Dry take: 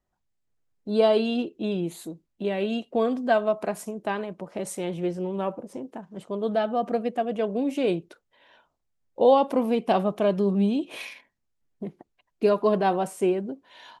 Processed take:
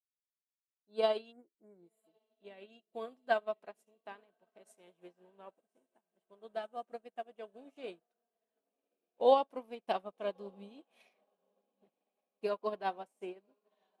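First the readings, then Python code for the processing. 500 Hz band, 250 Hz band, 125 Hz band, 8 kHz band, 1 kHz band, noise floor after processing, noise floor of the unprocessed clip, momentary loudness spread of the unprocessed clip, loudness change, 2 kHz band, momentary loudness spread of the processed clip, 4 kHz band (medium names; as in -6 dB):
-12.5 dB, -24.5 dB, under -25 dB, under -25 dB, -10.0 dB, under -85 dBFS, -77 dBFS, 17 LU, -11.0 dB, -10.5 dB, 23 LU, -10.5 dB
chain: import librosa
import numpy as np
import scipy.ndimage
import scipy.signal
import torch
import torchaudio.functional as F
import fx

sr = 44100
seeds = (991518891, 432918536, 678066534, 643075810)

p1 = fx.spec_repair(x, sr, seeds[0], start_s=1.34, length_s=0.85, low_hz=2300.0, high_hz=6800.0, source='after')
p2 = fx.highpass(p1, sr, hz=640.0, slope=6)
p3 = p2 + fx.echo_diffused(p2, sr, ms=1128, feedback_pct=63, wet_db=-16.0, dry=0)
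p4 = fx.upward_expand(p3, sr, threshold_db=-46.0, expansion=2.5)
y = p4 * librosa.db_to_amplitude(-2.5)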